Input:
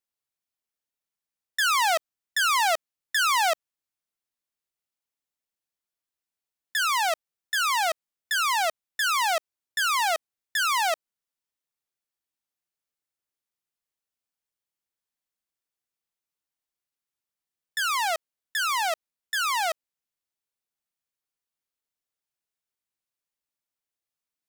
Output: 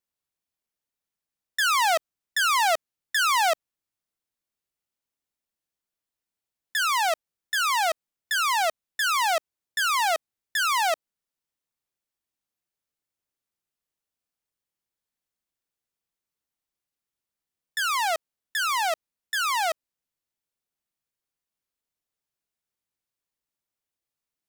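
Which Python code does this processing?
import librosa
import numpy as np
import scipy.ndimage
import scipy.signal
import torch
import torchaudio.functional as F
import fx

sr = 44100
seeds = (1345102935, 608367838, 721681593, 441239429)

y = fx.low_shelf(x, sr, hz=470.0, db=5.0)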